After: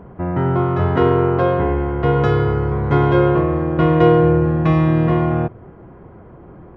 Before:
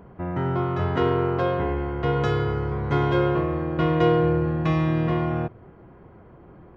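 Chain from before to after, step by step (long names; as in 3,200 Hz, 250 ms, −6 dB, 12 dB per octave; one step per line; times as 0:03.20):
high-shelf EQ 3,200 Hz −12 dB
level +7.5 dB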